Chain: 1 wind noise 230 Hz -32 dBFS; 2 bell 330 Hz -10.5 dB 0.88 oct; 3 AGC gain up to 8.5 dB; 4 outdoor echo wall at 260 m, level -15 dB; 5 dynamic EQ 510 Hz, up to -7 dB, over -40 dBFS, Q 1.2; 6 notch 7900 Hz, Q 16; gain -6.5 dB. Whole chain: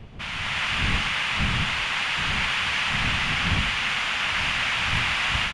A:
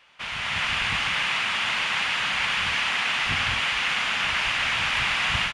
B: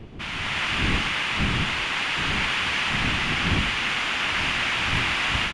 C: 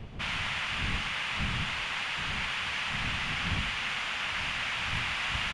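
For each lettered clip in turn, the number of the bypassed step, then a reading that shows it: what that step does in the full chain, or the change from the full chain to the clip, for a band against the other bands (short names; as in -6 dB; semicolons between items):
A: 1, 125 Hz band -8.5 dB; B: 2, 500 Hz band +3.5 dB; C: 3, loudness change -7.5 LU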